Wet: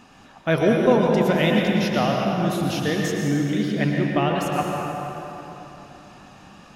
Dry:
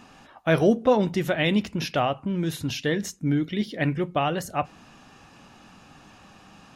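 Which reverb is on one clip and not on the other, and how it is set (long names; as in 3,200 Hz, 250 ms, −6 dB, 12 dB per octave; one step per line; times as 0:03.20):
dense smooth reverb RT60 3.5 s, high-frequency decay 0.6×, pre-delay 95 ms, DRR −1 dB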